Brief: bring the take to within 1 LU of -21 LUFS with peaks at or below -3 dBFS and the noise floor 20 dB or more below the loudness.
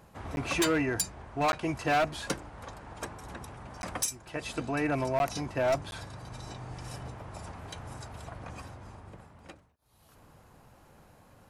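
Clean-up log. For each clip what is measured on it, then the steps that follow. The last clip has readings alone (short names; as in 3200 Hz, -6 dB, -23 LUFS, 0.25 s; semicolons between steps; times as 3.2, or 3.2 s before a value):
clipped 1.0%; flat tops at -22.0 dBFS; dropouts 5; longest dropout 11 ms; loudness -33.0 LUFS; peak -22.0 dBFS; loudness target -21.0 LUFS
-> clip repair -22 dBFS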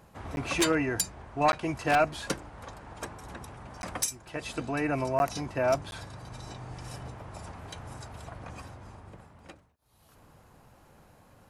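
clipped 0.0%; dropouts 5; longest dropout 11 ms
-> interpolate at 0.36/1.52/3.82/5.19/5.91, 11 ms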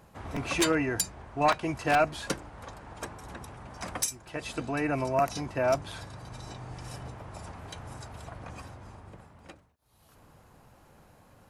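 dropouts 0; loudness -30.5 LUFS; peak -13.0 dBFS; loudness target -21.0 LUFS
-> gain +9.5 dB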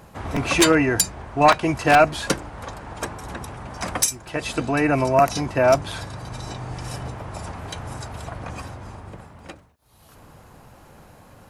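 loudness -21.0 LUFS; peak -3.5 dBFS; noise floor -49 dBFS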